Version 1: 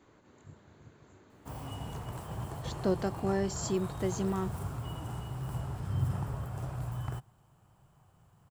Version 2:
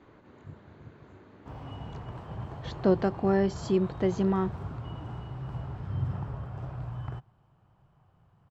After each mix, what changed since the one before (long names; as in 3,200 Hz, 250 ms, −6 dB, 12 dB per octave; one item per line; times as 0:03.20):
speech +6.5 dB
master: add high-frequency loss of the air 210 metres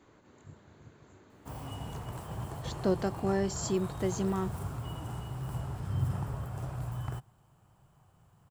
speech −5.5 dB
master: remove high-frequency loss of the air 210 metres